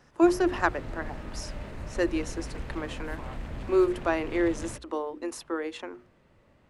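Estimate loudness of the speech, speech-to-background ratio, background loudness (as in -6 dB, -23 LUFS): -29.0 LUFS, 11.5 dB, -40.5 LUFS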